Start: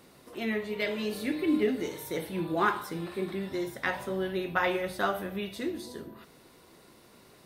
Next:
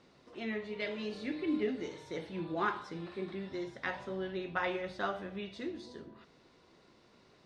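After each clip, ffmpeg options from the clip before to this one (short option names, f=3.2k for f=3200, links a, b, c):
-af "lowpass=f=6.1k:w=0.5412,lowpass=f=6.1k:w=1.3066,volume=-6.5dB"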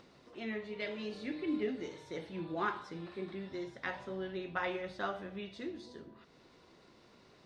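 -af "acompressor=mode=upward:threshold=-53dB:ratio=2.5,volume=-2dB"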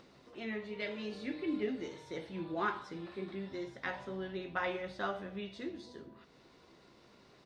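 -filter_complex "[0:a]asplit=2[a][b];[b]adelay=15,volume=-12dB[c];[a][c]amix=inputs=2:normalize=0"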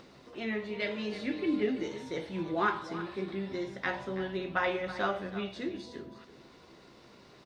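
-af "aecho=1:1:326:0.211,volume=5.5dB"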